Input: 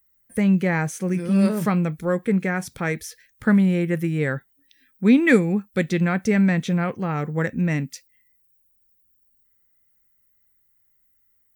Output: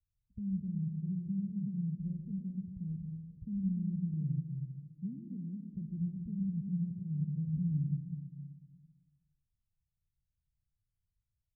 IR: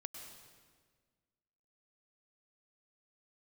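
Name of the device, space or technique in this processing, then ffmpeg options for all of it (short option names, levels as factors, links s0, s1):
club heard from the street: -filter_complex "[0:a]alimiter=limit=0.168:level=0:latency=1:release=426,lowpass=f=140:w=0.5412,lowpass=f=140:w=1.3066[s0];[1:a]atrim=start_sample=2205[s1];[s0][s1]afir=irnorm=-1:irlink=0,asettb=1/sr,asplit=3[s2][s3][s4];[s2]atrim=end=3.634[s5];[s3]atrim=start=3.63:end=4.14,asetpts=PTS-STARTPTS,afade=t=in:d=0.004:c=qsin,afade=t=out:st=0.506:d=0.004:c=qsin,aecho=1:1:4.4:0.44,atrim=end_sample=22491[s6];[s4]atrim=start=4.136[s7];[s5][s6]acrossfade=d=0.004:c1=hsin:c2=qsin[s8];[s8][s7]acrossfade=d=0.004:c1=qsin:c2=hsin,volume=1.33"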